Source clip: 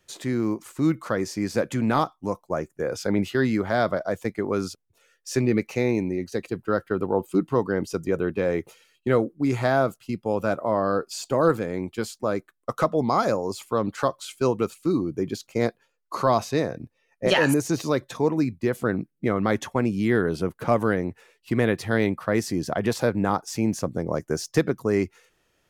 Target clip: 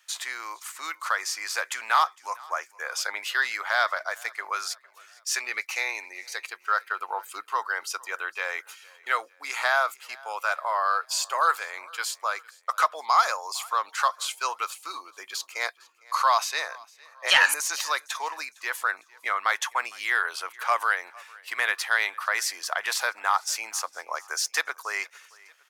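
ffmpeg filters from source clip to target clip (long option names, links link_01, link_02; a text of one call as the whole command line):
ffmpeg -i in.wav -filter_complex "[0:a]highpass=frequency=1000:width=0.5412,highpass=frequency=1000:width=1.3066,asoftclip=type=tanh:threshold=-13.5dB,asplit=2[link_01][link_02];[link_02]aecho=0:1:457|914|1371:0.0631|0.0284|0.0128[link_03];[link_01][link_03]amix=inputs=2:normalize=0,volume=7dB" out.wav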